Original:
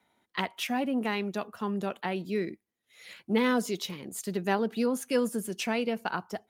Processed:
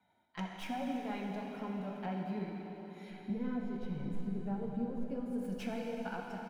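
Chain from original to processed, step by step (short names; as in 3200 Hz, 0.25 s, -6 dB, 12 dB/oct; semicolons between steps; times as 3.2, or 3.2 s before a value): tracing distortion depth 0.061 ms; 3.1–5.26 tilt -3.5 dB/oct; harmonic-percussive split percussive -9 dB; high shelf 2500 Hz -9.5 dB; comb 1.3 ms, depth 40%; compressor 12:1, threshold -36 dBFS, peak gain reduction 20 dB; flange 1.1 Hz, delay 0.7 ms, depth 6 ms, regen -39%; reverb RT60 4.6 s, pre-delay 5 ms, DRR -0.5 dB; gain +2.5 dB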